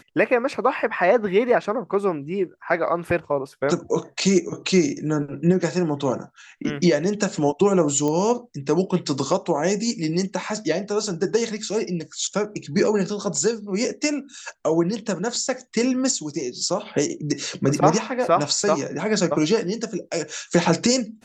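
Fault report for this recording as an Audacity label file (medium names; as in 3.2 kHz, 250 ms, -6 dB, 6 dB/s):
8.080000	8.080000	pop -14 dBFS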